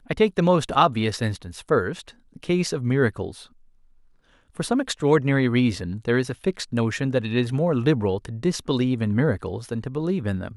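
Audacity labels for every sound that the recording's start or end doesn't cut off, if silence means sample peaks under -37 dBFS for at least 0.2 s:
2.360000	3.440000	sound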